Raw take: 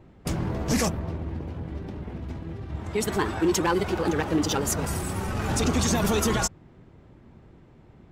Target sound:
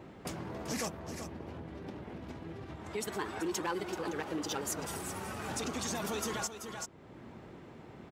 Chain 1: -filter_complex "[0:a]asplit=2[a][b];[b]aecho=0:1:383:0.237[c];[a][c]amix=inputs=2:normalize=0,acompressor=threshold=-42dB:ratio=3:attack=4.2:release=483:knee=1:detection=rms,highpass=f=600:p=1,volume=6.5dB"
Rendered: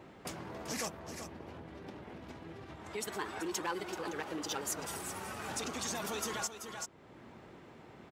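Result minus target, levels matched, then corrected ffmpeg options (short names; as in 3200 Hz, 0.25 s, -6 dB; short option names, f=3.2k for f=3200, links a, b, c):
250 Hz band -2.5 dB
-filter_complex "[0:a]asplit=2[a][b];[b]aecho=0:1:383:0.237[c];[a][c]amix=inputs=2:normalize=0,acompressor=threshold=-42dB:ratio=3:attack=4.2:release=483:knee=1:detection=rms,highpass=f=300:p=1,volume=6.5dB"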